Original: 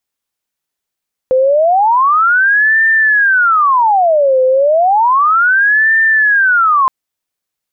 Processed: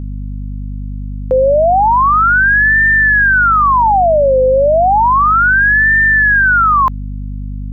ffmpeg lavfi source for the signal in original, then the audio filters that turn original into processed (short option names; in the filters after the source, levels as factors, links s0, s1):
-f lavfi -i "aevalsrc='0.447*sin(2*PI*(1152.5*t-637.5/(2*PI*0.32)*sin(2*PI*0.32*t)))':d=5.57:s=44100"
-af "aeval=exprs='val(0)+0.0891*(sin(2*PI*50*n/s)+sin(2*PI*2*50*n/s)/2+sin(2*PI*3*50*n/s)/3+sin(2*PI*4*50*n/s)/4+sin(2*PI*5*50*n/s)/5)':c=same"